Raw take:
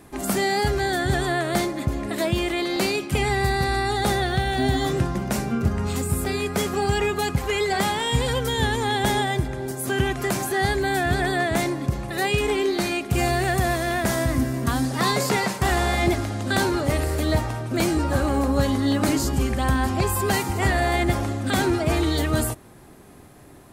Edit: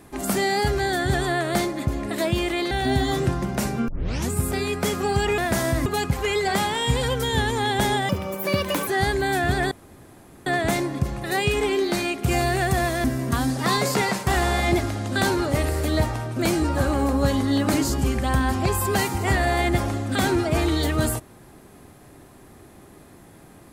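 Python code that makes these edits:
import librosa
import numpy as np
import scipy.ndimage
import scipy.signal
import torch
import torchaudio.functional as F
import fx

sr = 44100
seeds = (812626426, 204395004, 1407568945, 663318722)

y = fx.edit(x, sr, fx.cut(start_s=2.71, length_s=1.73),
    fx.tape_start(start_s=5.61, length_s=0.42),
    fx.speed_span(start_s=9.34, length_s=1.15, speed=1.47),
    fx.insert_room_tone(at_s=11.33, length_s=0.75),
    fx.move(start_s=13.91, length_s=0.48, to_s=7.11), tone=tone)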